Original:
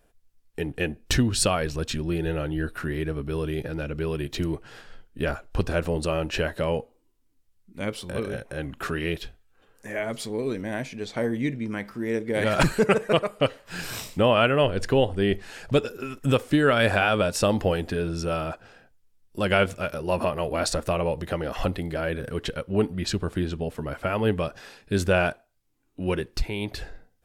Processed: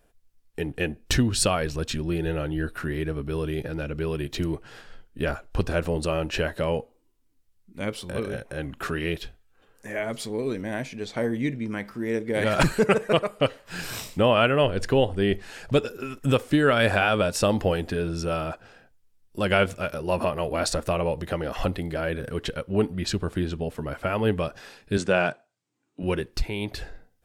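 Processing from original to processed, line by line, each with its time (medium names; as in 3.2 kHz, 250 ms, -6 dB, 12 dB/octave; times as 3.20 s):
24.97–26.03 s: elliptic band-pass 130–8200 Hz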